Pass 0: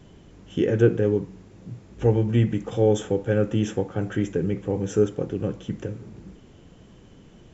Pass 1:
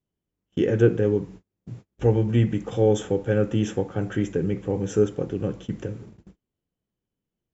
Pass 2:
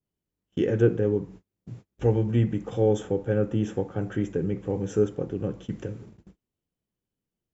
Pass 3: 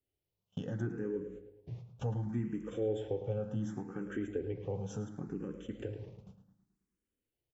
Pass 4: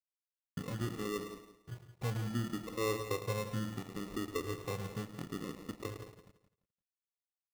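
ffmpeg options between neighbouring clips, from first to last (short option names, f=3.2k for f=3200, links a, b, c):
-af "agate=range=-36dB:threshold=-40dB:ratio=16:detection=peak"
-af "adynamicequalizer=threshold=0.00891:dfrequency=1600:dqfactor=0.7:tfrequency=1600:tqfactor=0.7:attack=5:release=100:ratio=0.375:range=4:mode=cutabove:tftype=highshelf,volume=-2.5dB"
-filter_complex "[0:a]acompressor=threshold=-37dB:ratio=2,asplit=2[a][b];[b]adelay=108,lowpass=f=4k:p=1,volume=-10dB,asplit=2[c][d];[d]adelay=108,lowpass=f=4k:p=1,volume=0.51,asplit=2[e][f];[f]adelay=108,lowpass=f=4k:p=1,volume=0.51,asplit=2[g][h];[h]adelay=108,lowpass=f=4k:p=1,volume=0.51,asplit=2[i][j];[j]adelay=108,lowpass=f=4k:p=1,volume=0.51,asplit=2[k][l];[l]adelay=108,lowpass=f=4k:p=1,volume=0.51[m];[a][c][e][g][i][k][m]amix=inputs=7:normalize=0,asplit=2[n][o];[o]afreqshift=0.69[p];[n][p]amix=inputs=2:normalize=1"
-af "acrusher=samples=28:mix=1:aa=0.000001,aeval=exprs='sgn(val(0))*max(abs(val(0))-0.00282,0)':c=same,aecho=1:1:171|342|513:0.251|0.0628|0.0157"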